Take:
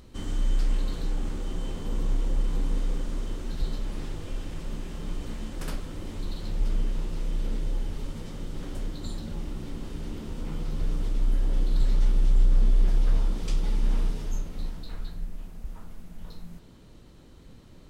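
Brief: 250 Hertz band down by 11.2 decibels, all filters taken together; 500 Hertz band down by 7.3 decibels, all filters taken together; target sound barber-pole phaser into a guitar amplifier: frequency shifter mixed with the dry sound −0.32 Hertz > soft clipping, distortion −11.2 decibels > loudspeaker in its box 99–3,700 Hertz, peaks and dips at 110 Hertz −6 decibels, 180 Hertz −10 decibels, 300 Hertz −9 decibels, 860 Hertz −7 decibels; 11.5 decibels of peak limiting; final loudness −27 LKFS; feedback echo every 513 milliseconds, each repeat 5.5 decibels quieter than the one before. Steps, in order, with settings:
parametric band 250 Hz −5.5 dB
parametric band 500 Hz −5 dB
brickwall limiter −22.5 dBFS
repeating echo 513 ms, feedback 53%, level −5.5 dB
frequency shifter mixed with the dry sound −0.32 Hz
soft clipping −28 dBFS
loudspeaker in its box 99–3,700 Hz, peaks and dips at 110 Hz −6 dB, 180 Hz −10 dB, 300 Hz −9 dB, 860 Hz −7 dB
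level +24.5 dB

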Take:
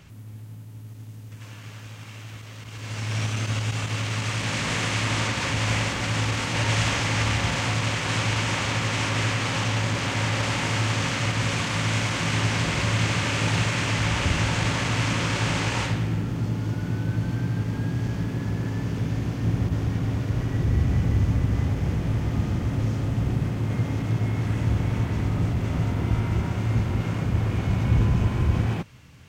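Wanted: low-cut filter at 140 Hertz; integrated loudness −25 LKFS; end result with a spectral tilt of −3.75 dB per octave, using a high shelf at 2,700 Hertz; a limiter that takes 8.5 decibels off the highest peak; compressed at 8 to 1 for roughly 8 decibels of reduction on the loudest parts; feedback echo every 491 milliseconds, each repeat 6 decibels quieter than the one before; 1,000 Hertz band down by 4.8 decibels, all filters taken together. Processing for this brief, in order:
high-pass filter 140 Hz
parametric band 1,000 Hz −7.5 dB
high-shelf EQ 2,700 Hz +8 dB
downward compressor 8 to 1, threshold −29 dBFS
brickwall limiter −27 dBFS
repeating echo 491 ms, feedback 50%, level −6 dB
level +9 dB

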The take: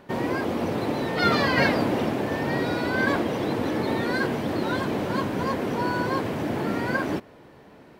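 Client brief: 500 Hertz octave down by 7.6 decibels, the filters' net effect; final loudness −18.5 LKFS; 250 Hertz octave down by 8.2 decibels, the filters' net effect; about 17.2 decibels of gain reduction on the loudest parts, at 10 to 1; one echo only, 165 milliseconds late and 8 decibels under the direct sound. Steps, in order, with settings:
parametric band 250 Hz −8.5 dB
parametric band 500 Hz −7 dB
downward compressor 10 to 1, threshold −37 dBFS
single-tap delay 165 ms −8 dB
level +21 dB

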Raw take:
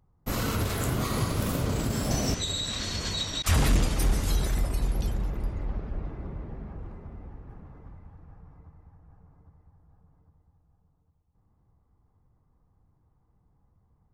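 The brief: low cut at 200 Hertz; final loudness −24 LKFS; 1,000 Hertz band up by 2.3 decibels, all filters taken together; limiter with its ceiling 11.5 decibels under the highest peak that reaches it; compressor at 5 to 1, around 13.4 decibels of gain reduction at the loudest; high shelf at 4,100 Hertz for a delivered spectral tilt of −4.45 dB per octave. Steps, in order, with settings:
high-pass filter 200 Hz
parametric band 1,000 Hz +3.5 dB
high-shelf EQ 4,100 Hz −8.5 dB
downward compressor 5 to 1, threshold −42 dBFS
level +25.5 dB
brickwall limiter −15 dBFS

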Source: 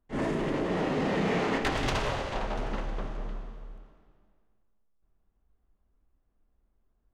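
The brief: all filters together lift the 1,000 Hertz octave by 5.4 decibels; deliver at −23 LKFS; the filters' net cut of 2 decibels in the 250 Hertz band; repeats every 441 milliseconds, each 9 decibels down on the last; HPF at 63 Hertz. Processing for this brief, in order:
high-pass filter 63 Hz
parametric band 250 Hz −3 dB
parametric band 1,000 Hz +7 dB
repeating echo 441 ms, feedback 35%, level −9 dB
level +5.5 dB

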